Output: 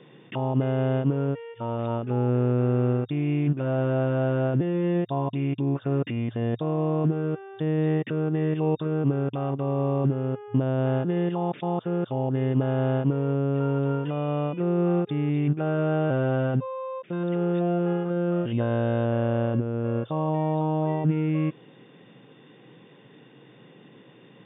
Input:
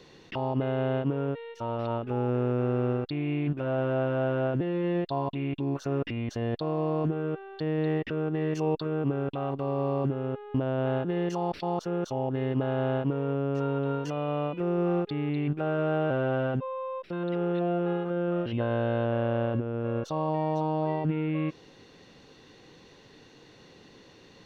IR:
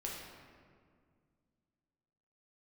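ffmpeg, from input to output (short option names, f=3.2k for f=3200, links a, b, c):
-af "lowshelf=f=260:g=8,afftfilt=real='re*between(b*sr/4096,110,3700)':imag='im*between(b*sr/4096,110,3700)':win_size=4096:overlap=0.75"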